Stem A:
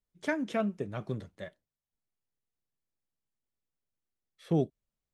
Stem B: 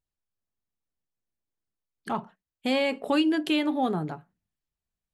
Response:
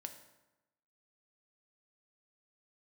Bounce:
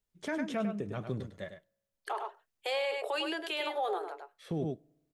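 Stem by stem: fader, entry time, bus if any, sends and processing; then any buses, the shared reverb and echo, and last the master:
0.0 dB, 0.00 s, send -17.5 dB, echo send -8.5 dB, dry
+0.5 dB, 0.00 s, no send, echo send -10 dB, steep high-pass 370 Hz 72 dB/oct; auto duck -15 dB, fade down 0.45 s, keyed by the first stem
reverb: on, RT60 1.0 s, pre-delay 3 ms
echo: echo 0.102 s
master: limiter -25 dBFS, peak gain reduction 10 dB

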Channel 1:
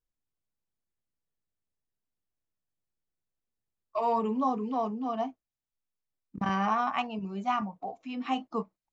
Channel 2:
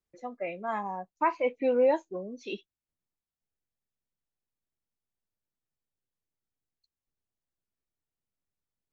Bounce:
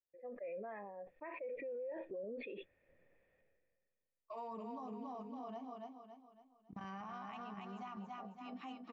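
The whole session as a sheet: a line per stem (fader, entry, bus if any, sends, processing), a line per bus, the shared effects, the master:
-14.0 dB, 0.35 s, no send, echo send -5 dB, dry
-2.0 dB, 0.00 s, no send, no echo send, vocal tract filter e; sustainer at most 33 dB/s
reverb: off
echo: feedback echo 0.278 s, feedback 42%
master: limiter -39 dBFS, peak gain reduction 22 dB

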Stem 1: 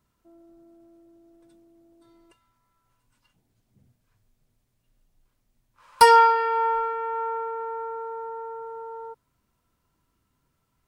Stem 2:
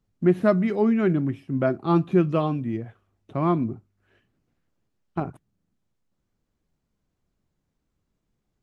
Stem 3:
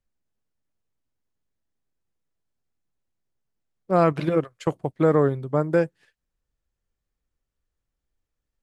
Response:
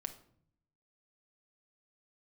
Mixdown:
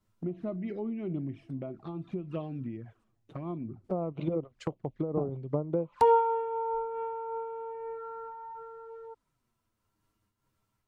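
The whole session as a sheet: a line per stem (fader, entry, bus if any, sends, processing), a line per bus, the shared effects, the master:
0.0 dB, 0.00 s, muted 3.04–3.84, no send, dry
-2.0 dB, 0.00 s, send -16.5 dB, compressor 6:1, threshold -28 dBFS, peak gain reduction 14.5 dB
-1.0 dB, 0.00 s, no send, compressor 6:1, threshold -22 dBFS, peak gain reduction 9 dB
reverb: on, RT60 0.60 s, pre-delay 5 ms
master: treble ducked by the level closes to 980 Hz, closed at -23 dBFS; envelope flanger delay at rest 9.8 ms, full sweep at -28 dBFS; noise-modulated level, depth 65%

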